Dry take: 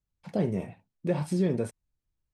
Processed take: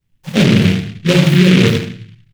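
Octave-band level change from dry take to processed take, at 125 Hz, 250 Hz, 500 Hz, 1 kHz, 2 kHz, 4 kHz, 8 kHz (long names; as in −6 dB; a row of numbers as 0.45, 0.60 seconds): +20.5, +18.5, +13.5, +15.0, +28.5, +33.5, +20.5 decibels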